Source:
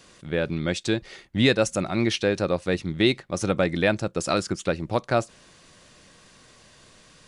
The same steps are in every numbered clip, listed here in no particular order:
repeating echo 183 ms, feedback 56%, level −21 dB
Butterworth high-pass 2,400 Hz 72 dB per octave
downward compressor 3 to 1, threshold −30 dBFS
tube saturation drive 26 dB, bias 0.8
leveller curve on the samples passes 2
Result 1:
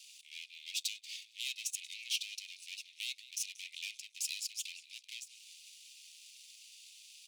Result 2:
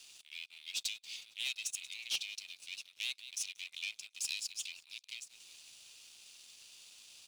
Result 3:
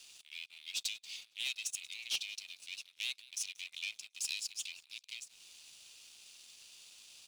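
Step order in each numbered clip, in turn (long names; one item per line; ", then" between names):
downward compressor, then repeating echo, then leveller curve on the samples, then tube saturation, then Butterworth high-pass
repeating echo, then downward compressor, then tube saturation, then Butterworth high-pass, then leveller curve on the samples
downward compressor, then repeating echo, then tube saturation, then Butterworth high-pass, then leveller curve on the samples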